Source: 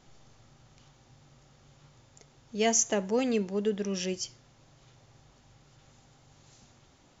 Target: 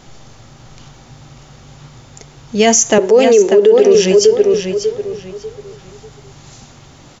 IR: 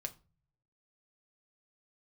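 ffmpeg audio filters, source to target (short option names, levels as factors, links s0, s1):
-filter_complex "[0:a]asettb=1/sr,asplit=3[s0][s1][s2];[s0]atrim=end=2.984[s3];[s1]atrim=start=2.98:end=3.95,asetpts=PTS-STARTPTS,afade=t=in:d=0.004:c=qsin,afade=t=out:st=0.966:d=0.004:c=qsin,highpass=f=400:t=q:w=4.9[s4];[s2]atrim=start=3.946[s5];[s3][s4]acrossfade=d=0.004:c1=hsin:c2=qsin[s6];[s6][s5]acrossfade=d=0.004:c1=qsin:c2=hsin,asplit=2[s7][s8];[s8]adelay=593,lowpass=f=4300:p=1,volume=0.473,asplit=2[s9][s10];[s10]adelay=593,lowpass=f=4300:p=1,volume=0.28,asplit=2[s11][s12];[s12]adelay=593,lowpass=f=4300:p=1,volume=0.28,asplit=2[s13][s14];[s14]adelay=593,lowpass=f=4300:p=1,volume=0.28[s15];[s7][s9][s11][s13][s15]amix=inputs=5:normalize=0,alimiter=level_in=8.91:limit=0.891:release=50:level=0:latency=1,volume=0.891"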